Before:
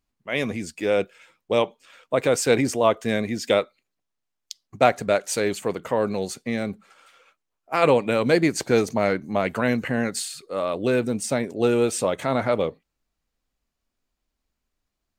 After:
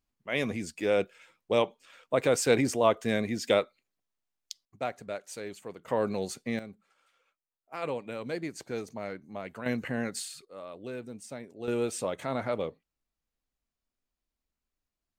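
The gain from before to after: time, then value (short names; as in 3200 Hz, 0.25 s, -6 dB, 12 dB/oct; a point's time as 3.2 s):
-4.5 dB
from 4.65 s -16 dB
from 5.88 s -5.5 dB
from 6.59 s -16 dB
from 9.66 s -8 dB
from 10.45 s -17.5 dB
from 11.68 s -9 dB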